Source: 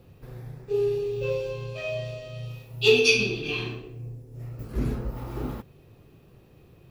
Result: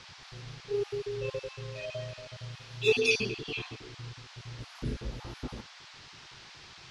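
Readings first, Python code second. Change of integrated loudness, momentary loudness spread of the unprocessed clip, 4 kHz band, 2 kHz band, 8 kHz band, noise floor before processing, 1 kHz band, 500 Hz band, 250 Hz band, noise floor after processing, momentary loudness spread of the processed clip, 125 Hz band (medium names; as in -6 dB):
-7.5 dB, 21 LU, -7.5 dB, -6.0 dB, -6.5 dB, -55 dBFS, -4.5 dB, -7.0 dB, -7.5 dB, -51 dBFS, 21 LU, -7.0 dB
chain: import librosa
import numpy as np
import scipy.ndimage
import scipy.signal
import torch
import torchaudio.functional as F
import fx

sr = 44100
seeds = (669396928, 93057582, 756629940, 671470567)

y = fx.spec_dropout(x, sr, seeds[0], share_pct=29)
y = scipy.signal.sosfilt(scipy.signal.ellip(4, 1.0, 40, 11000.0, 'lowpass', fs=sr, output='sos'), y)
y = fx.dmg_noise_band(y, sr, seeds[1], low_hz=720.0, high_hz=5300.0, level_db=-47.0)
y = y * librosa.db_to_amplitude(-4.5)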